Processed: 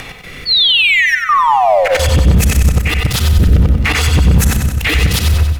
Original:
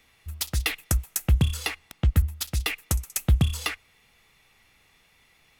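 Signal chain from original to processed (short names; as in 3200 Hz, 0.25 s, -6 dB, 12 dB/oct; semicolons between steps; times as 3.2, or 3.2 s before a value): whole clip reversed; high shelf 4500 Hz -10 dB; sample leveller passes 3; rotary speaker horn 0.9 Hz, later 6.7 Hz, at 3.95; upward compressor, threshold -46 dBFS; painted sound fall, 0.45–1.97, 430–4600 Hz -31 dBFS; auto swell 0.177 s; step gate "x.xxxxxxx..xxxx" 128 bpm -24 dB; speakerphone echo 90 ms, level -7 dB; shoebox room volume 2500 m³, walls furnished, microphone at 0.42 m; maximiser +34 dB; lo-fi delay 94 ms, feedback 55%, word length 7-bit, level -7 dB; gain -5.5 dB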